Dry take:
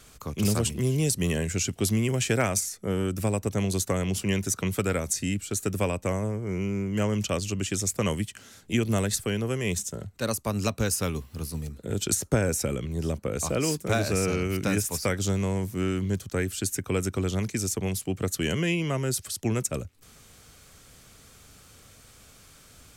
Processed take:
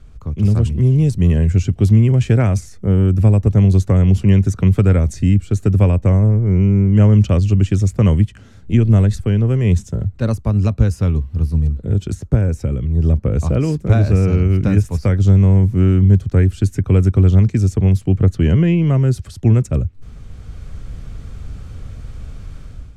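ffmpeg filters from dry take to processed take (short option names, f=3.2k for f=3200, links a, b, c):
-filter_complex "[0:a]asettb=1/sr,asplit=3[a][b][c];[a]atrim=end=18.184[d];[b]atrim=start=18.18:end=18.87,asetpts=PTS-STARTPTS,afade=t=in:d=0.004:c=qsin,afade=t=out:st=0.686:d=0.004:c=qsin,highshelf=f=4.7k:g=-8.5[e];[c]atrim=start=18.866[f];[d][e]acrossfade=d=0.004:c1=hsin:c2=qsin[g];[g][f]acrossfade=d=0.004:c1=qsin:c2=hsin,aemphasis=mode=reproduction:type=riaa,dynaudnorm=f=390:g=3:m=11.5dB,lowshelf=f=120:g=5.5,volume=-3.5dB"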